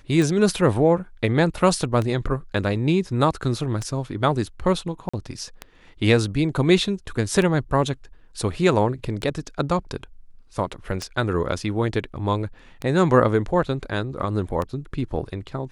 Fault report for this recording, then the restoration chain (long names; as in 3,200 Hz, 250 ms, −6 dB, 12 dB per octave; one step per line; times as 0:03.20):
scratch tick 33 1/3 rpm
0:05.09–0:05.13: drop-out 45 ms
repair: click removal
repair the gap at 0:05.09, 45 ms